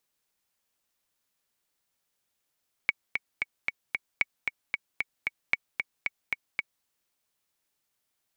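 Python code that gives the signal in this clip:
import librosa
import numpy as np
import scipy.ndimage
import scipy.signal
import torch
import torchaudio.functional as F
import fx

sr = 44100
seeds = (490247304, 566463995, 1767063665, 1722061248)

y = fx.click_track(sr, bpm=227, beats=5, bars=3, hz=2240.0, accent_db=5.0, level_db=-9.5)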